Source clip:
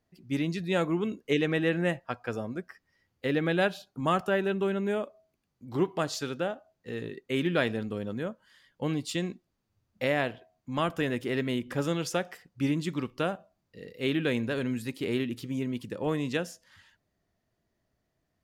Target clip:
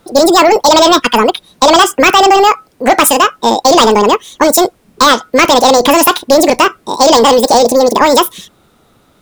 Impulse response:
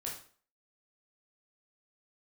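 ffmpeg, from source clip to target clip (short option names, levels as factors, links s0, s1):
-af "asetrate=88200,aresample=44100,apsyclip=31.6,volume=0.794"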